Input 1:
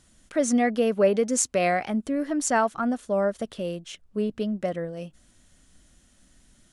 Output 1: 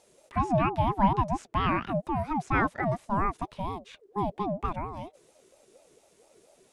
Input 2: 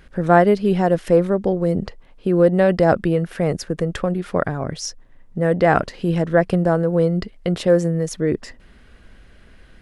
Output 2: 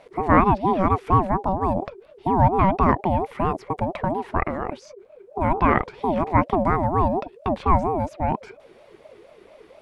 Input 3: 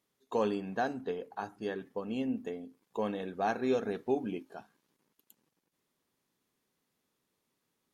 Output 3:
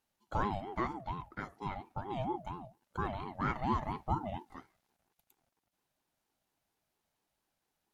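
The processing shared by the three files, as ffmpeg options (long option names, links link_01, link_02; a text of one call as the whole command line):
ffmpeg -i in.wav -filter_complex "[0:a]acrossover=split=2800[link_01][link_02];[link_02]acompressor=threshold=-54dB:ratio=4:attack=1:release=60[link_03];[link_01][link_03]amix=inputs=2:normalize=0,aeval=exprs='val(0)*sin(2*PI*500*n/s+500*0.25/4.3*sin(2*PI*4.3*n/s))':channel_layout=same" out.wav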